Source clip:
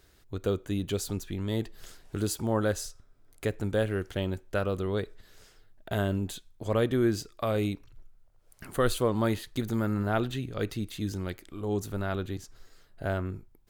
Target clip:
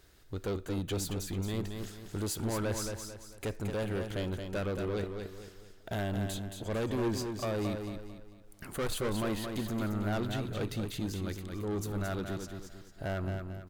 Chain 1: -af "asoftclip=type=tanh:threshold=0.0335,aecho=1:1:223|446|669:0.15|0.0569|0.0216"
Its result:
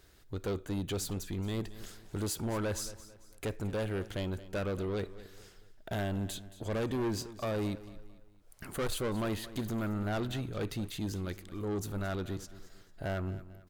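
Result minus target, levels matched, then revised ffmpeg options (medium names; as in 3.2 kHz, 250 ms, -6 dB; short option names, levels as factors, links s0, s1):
echo-to-direct -10.5 dB
-af "asoftclip=type=tanh:threshold=0.0335,aecho=1:1:223|446|669|892|1115:0.501|0.19|0.0724|0.0275|0.0105"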